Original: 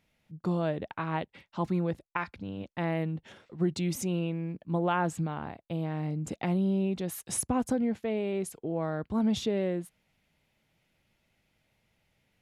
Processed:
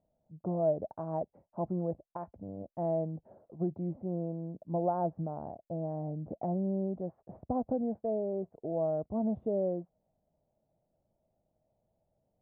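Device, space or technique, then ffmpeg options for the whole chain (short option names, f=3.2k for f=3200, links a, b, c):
under water: -af "lowpass=f=820:w=0.5412,lowpass=f=820:w=1.3066,equalizer=f=640:t=o:w=0.54:g=11.5,volume=-5.5dB"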